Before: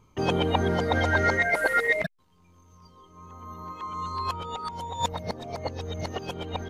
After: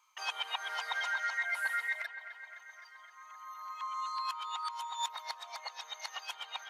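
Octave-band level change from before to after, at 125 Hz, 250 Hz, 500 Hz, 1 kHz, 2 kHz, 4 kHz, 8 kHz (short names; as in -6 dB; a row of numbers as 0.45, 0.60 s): under -40 dB, under -40 dB, -27.0 dB, -8.0 dB, -8.0 dB, -3.0 dB, -3.5 dB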